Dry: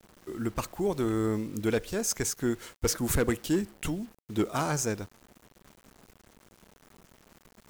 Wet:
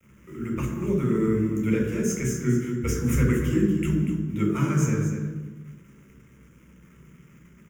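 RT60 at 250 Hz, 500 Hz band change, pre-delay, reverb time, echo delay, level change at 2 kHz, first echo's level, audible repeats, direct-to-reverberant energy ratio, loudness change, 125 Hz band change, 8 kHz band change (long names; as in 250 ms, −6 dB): 1.5 s, +2.0 dB, 3 ms, 1.2 s, 240 ms, +2.0 dB, −9.5 dB, 1, −0.5 dB, +5.5 dB, +11.0 dB, −3.0 dB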